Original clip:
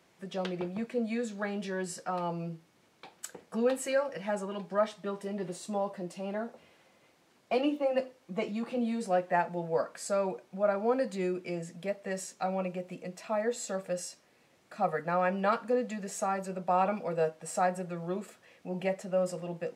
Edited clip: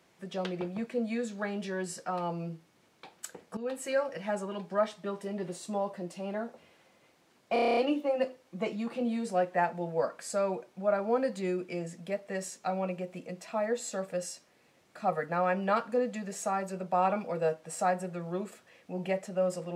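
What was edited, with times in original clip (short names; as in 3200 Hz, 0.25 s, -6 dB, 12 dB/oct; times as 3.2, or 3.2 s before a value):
3.57–3.99 fade in, from -13.5 dB
7.53 stutter 0.03 s, 9 plays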